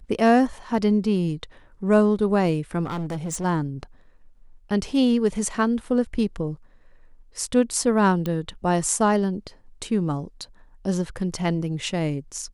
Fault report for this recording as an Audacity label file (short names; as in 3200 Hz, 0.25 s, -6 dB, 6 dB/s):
2.840000	3.450000	clipped -25.5 dBFS
8.260000	8.260000	pop -15 dBFS